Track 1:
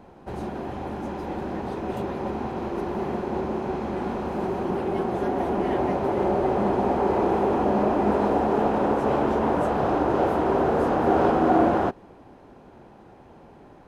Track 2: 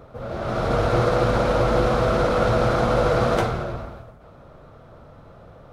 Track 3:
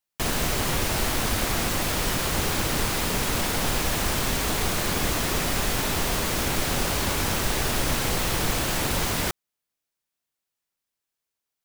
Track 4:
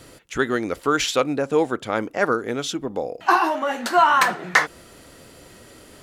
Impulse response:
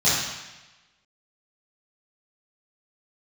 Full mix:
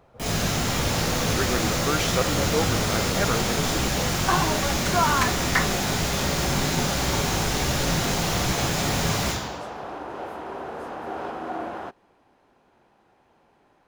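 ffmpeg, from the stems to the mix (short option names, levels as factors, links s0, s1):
-filter_complex "[0:a]tiltshelf=f=740:g=-6.5,volume=0.282[s0];[1:a]volume=0.211[s1];[2:a]flanger=delay=15:depth=5.1:speed=1.3,volume=0.708,asplit=2[s2][s3];[s3]volume=0.251[s4];[3:a]adelay=1000,volume=0.473[s5];[4:a]atrim=start_sample=2205[s6];[s4][s6]afir=irnorm=-1:irlink=0[s7];[s0][s1][s2][s5][s7]amix=inputs=5:normalize=0"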